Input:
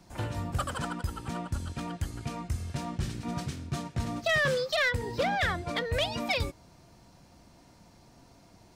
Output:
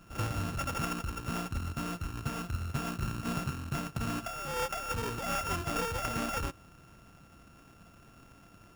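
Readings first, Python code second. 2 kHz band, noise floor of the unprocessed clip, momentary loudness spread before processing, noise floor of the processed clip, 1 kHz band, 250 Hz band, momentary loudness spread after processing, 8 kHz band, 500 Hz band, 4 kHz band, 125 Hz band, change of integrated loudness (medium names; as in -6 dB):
-8.5 dB, -58 dBFS, 10 LU, -58 dBFS, -1.5 dB, -1.0 dB, 4 LU, +2.0 dB, -7.0 dB, -7.5 dB, -2.0 dB, -3.5 dB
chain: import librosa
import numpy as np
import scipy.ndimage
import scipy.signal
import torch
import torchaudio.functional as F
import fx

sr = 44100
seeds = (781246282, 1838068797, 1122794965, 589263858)

y = np.r_[np.sort(x[:len(x) // 32 * 32].reshape(-1, 32), axis=1).ravel(), x[len(x) // 32 * 32:]]
y = fx.over_compress(y, sr, threshold_db=-30.0, ratio=-0.5)
y = fx.sample_hold(y, sr, seeds[0], rate_hz=4100.0, jitter_pct=0)
y = F.gain(torch.from_numpy(y), -1.5).numpy()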